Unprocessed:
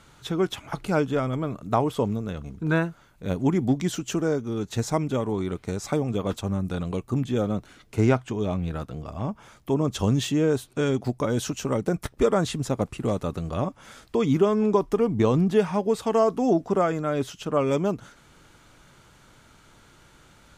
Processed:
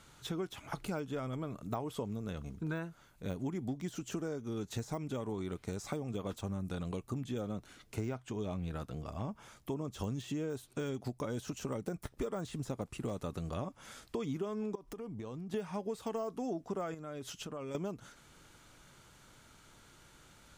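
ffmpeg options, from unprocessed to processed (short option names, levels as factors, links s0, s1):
-filter_complex "[0:a]asettb=1/sr,asplit=3[s0][s1][s2];[s0]atrim=end=14.754[s3];[s1]atrim=start=14.75:end=15.54,asetpts=PTS-STARTPTS,afade=t=in:d=0.004:c=qsin,afade=t=out:st=0.786:d=0.004:c=qsin,acompressor=threshold=0.02:ratio=8:attack=3.2:release=140:knee=1:detection=peak[s4];[s2]atrim=start=15.536[s5];[s3][s4]acrossfade=d=0.004:c1=hsin:c2=qsin[s6];[s6][s5]acrossfade=d=0.004:c1=qsin:c2=hsin,asettb=1/sr,asplit=3[s7][s8][s9];[s7]atrim=end=16.944[s10];[s8]atrim=start=16.94:end=17.75,asetpts=PTS-STARTPTS,afade=t=in:d=0.004:c=qsin,afade=t=out:st=0.806:d=0.004:c=qsin,acompressor=threshold=0.0224:ratio=6:attack=3.2:release=140:knee=1:detection=peak[s11];[s9]atrim=start=17.746[s12];[s10][s11]acrossfade=d=0.004:c1=hsin:c2=qsin[s13];[s13][s12]acrossfade=d=0.004:c1=qsin:c2=hsin,deesser=0.9,highshelf=f=4300:g=5.5,acompressor=threshold=0.0398:ratio=6,volume=0.473"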